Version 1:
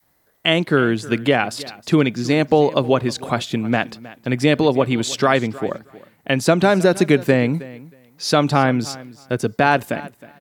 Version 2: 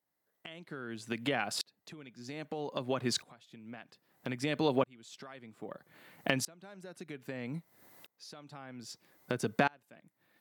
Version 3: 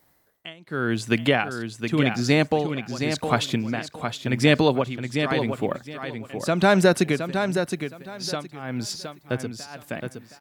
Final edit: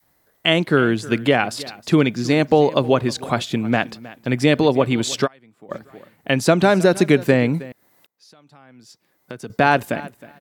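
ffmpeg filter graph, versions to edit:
ffmpeg -i take0.wav -i take1.wav -filter_complex "[1:a]asplit=2[link_01][link_02];[0:a]asplit=3[link_03][link_04][link_05];[link_03]atrim=end=5.28[link_06];[link_01]atrim=start=5.24:end=5.73[link_07];[link_04]atrim=start=5.69:end=7.722[link_08];[link_02]atrim=start=7.718:end=9.502[link_09];[link_05]atrim=start=9.498[link_10];[link_06][link_07]acrossfade=duration=0.04:curve1=tri:curve2=tri[link_11];[link_11][link_08]acrossfade=duration=0.04:curve1=tri:curve2=tri[link_12];[link_12][link_09]acrossfade=duration=0.004:curve1=hsin:curve2=hsin[link_13];[link_13][link_10]acrossfade=duration=0.004:curve1=hsin:curve2=hsin" out.wav

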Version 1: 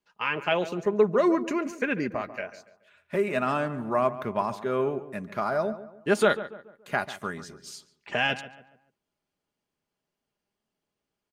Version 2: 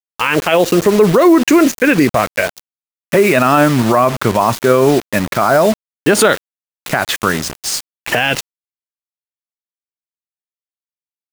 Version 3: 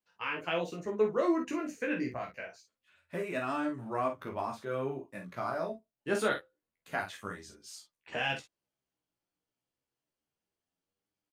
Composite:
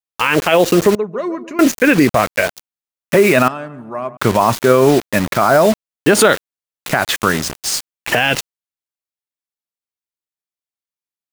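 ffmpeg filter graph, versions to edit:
ffmpeg -i take0.wav -i take1.wav -filter_complex "[0:a]asplit=2[link_01][link_02];[1:a]asplit=3[link_03][link_04][link_05];[link_03]atrim=end=0.952[link_06];[link_01]atrim=start=0.948:end=1.592[link_07];[link_04]atrim=start=1.588:end=3.482[link_08];[link_02]atrim=start=3.478:end=4.172[link_09];[link_05]atrim=start=4.168[link_10];[link_06][link_07]acrossfade=duration=0.004:curve1=hsin:curve2=hsin[link_11];[link_11][link_08]acrossfade=duration=0.004:curve1=hsin:curve2=hsin[link_12];[link_12][link_09]acrossfade=duration=0.004:curve1=hsin:curve2=hsin[link_13];[link_13][link_10]acrossfade=duration=0.004:curve1=hsin:curve2=hsin" out.wav

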